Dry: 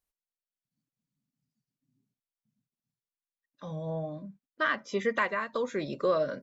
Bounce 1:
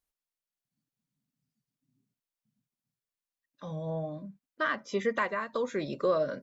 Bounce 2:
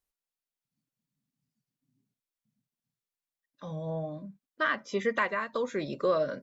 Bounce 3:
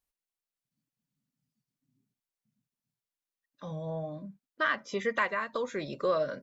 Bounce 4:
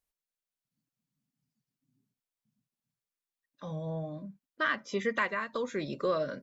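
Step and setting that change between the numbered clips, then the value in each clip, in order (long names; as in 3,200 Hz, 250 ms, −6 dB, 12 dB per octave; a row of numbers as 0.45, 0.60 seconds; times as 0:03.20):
dynamic equaliser, frequency: 2,600, 7,600, 270, 670 Hertz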